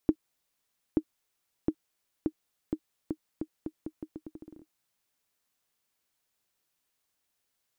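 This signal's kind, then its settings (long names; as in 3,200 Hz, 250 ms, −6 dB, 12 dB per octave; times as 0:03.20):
bouncing ball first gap 0.88 s, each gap 0.81, 312 Hz, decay 64 ms −11.5 dBFS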